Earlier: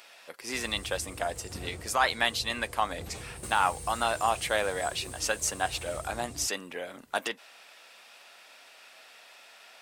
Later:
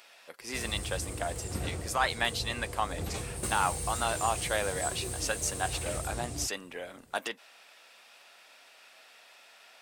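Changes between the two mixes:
speech −3.0 dB
background +6.0 dB

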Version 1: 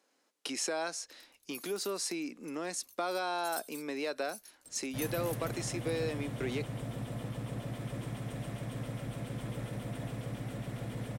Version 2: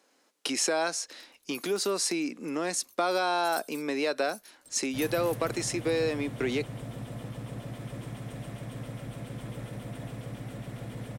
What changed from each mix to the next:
speech +7.0 dB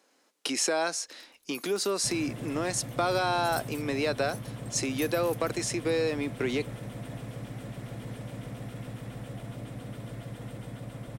second sound: entry −2.90 s

